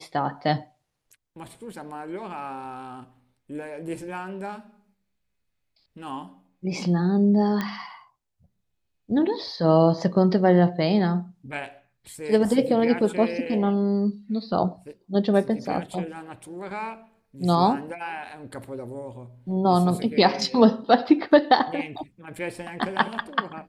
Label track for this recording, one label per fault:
7.610000	7.610000	pop -14 dBFS

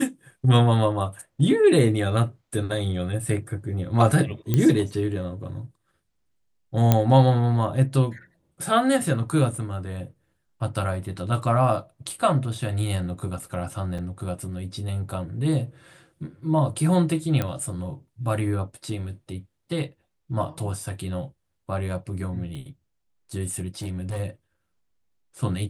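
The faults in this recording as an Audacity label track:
4.540000	4.540000	pop -9 dBFS
6.920000	6.920000	pop -4 dBFS
13.980000	13.990000	gap 5.3 ms
17.420000	17.420000	pop -12 dBFS
22.550000	22.550000	pop -27 dBFS
23.790000	24.200000	clipped -25.5 dBFS

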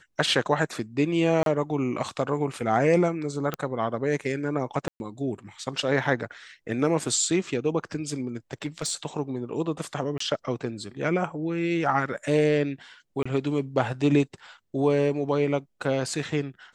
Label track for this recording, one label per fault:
1.430000	1.460000	gap 32 ms
3.540000	3.540000	pop -14 dBFS
4.880000	5.000000	gap 0.121 s
8.270000	8.920000	clipped -23 dBFS
10.180000	10.200000	gap 24 ms
13.230000	13.260000	gap 25 ms

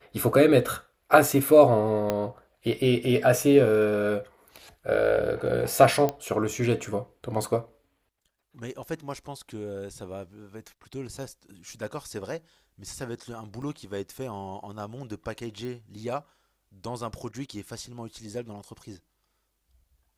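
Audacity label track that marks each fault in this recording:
2.100000	2.100000	pop -12 dBFS
6.090000	6.090000	pop -13 dBFS
13.620000	13.620000	gap 3.8 ms
15.650000	15.650000	pop

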